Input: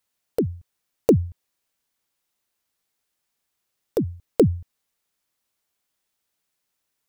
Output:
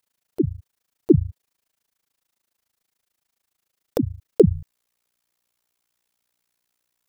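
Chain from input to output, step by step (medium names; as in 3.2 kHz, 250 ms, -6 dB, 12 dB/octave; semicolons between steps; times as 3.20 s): AM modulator 27 Hz, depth 100%, from 4.53 s modulator 60 Hz; trim +6 dB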